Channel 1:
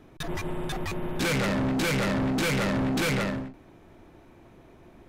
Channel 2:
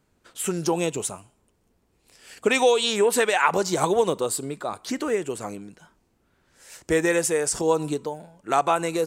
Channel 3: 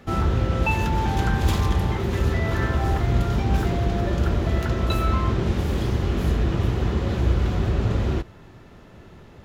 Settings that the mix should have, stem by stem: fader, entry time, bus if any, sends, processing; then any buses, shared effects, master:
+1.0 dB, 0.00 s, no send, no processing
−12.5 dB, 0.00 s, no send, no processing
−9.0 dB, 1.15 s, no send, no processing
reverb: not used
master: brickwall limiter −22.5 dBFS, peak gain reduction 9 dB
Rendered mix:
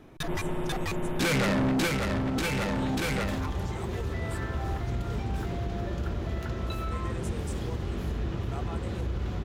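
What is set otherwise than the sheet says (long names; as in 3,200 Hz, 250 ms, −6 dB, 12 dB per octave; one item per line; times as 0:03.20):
stem 2 −12.5 dB → −21.5 dB
stem 3: entry 1.15 s → 1.80 s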